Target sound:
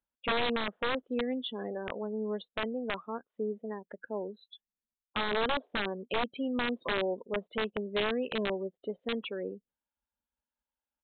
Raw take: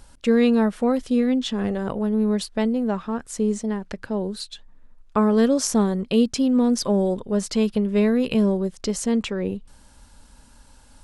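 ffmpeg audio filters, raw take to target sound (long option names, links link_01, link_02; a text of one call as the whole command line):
ffmpeg -i in.wav -af "afftdn=noise_reduction=33:noise_floor=-31,highpass=390,aresample=8000,aeval=exprs='(mod(7.5*val(0)+1,2)-1)/7.5':channel_layout=same,aresample=44100,volume=-6dB" out.wav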